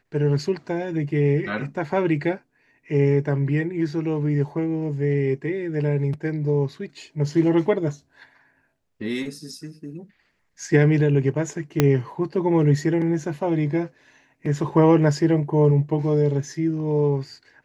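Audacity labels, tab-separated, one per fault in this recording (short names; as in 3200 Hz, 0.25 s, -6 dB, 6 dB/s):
11.800000	11.800000	pop -3 dBFS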